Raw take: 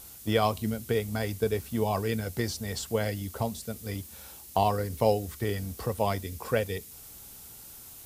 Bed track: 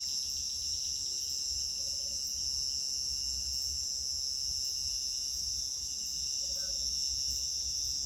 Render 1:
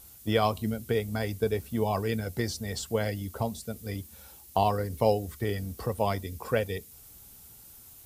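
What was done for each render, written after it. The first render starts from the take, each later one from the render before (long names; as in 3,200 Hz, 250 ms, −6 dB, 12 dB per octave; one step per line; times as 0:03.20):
broadband denoise 6 dB, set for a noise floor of −48 dBFS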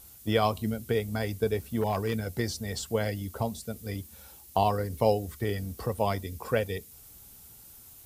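0:01.81–0:02.33: hard clipping −22 dBFS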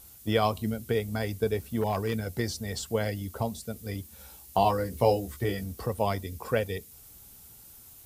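0:04.18–0:05.64: double-tracking delay 16 ms −4 dB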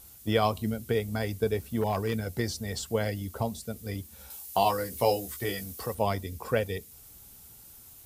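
0:04.30–0:05.95: spectral tilt +2 dB per octave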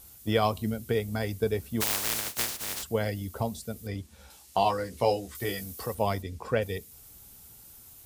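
0:01.80–0:02.82: compressing power law on the bin magnitudes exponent 0.11
0:03.87–0:05.35: high-frequency loss of the air 56 metres
0:06.22–0:06.62: high-frequency loss of the air 54 metres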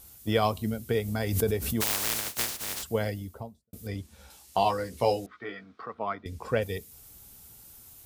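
0:00.91–0:02.23: background raised ahead of every attack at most 46 dB per second
0:02.98–0:03.73: fade out and dull
0:05.26–0:06.26: loudspeaker in its box 310–2,800 Hz, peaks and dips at 370 Hz −6 dB, 540 Hz −10 dB, 840 Hz −6 dB, 1,300 Hz +9 dB, 1,900 Hz −3 dB, 2,800 Hz −10 dB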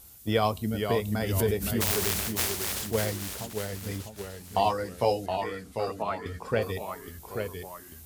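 delay with pitch and tempo change per echo 448 ms, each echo −1 semitone, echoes 3, each echo −6 dB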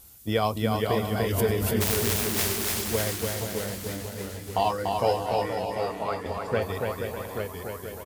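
bouncing-ball delay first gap 290 ms, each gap 0.65×, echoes 5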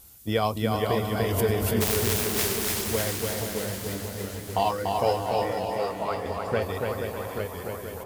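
delay that swaps between a low-pass and a high-pass 379 ms, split 1,400 Hz, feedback 69%, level −10.5 dB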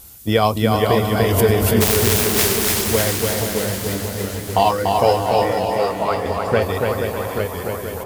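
level +9 dB
brickwall limiter −3 dBFS, peak gain reduction 1.5 dB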